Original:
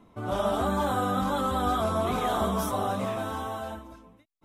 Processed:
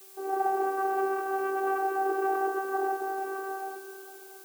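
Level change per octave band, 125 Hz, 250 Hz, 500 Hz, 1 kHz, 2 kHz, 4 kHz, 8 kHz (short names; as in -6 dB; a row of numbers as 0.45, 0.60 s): under -35 dB, -7.0 dB, -0.5 dB, 0.0 dB, +3.0 dB, under -15 dB, -7.0 dB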